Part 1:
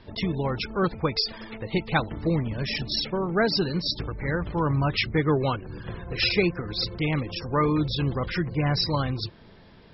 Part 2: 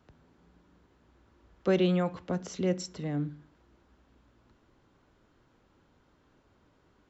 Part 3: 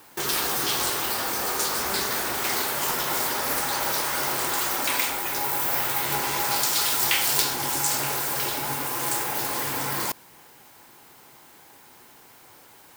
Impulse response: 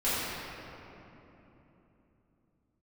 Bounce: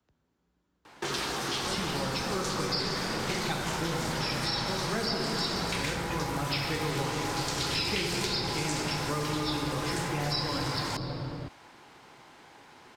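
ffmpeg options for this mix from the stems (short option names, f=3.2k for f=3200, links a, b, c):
-filter_complex "[0:a]highshelf=f=5.7k:g=10,adelay=1550,volume=-6dB,asplit=2[a][b];[b]volume=-8dB[c];[1:a]highshelf=f=4k:g=8.5,volume=-13.5dB[d];[2:a]lowpass=4.6k,adelay=850,volume=0.5dB[e];[3:a]atrim=start_sample=2205[f];[c][f]afir=irnorm=-1:irlink=0[g];[a][d][e][g]amix=inputs=4:normalize=0,acrossover=split=81|330|4700[h][i][j][k];[h]acompressor=threshold=-46dB:ratio=4[l];[i]acompressor=threshold=-36dB:ratio=4[m];[j]acompressor=threshold=-33dB:ratio=4[n];[k]acompressor=threshold=-35dB:ratio=4[o];[l][m][n][o]amix=inputs=4:normalize=0"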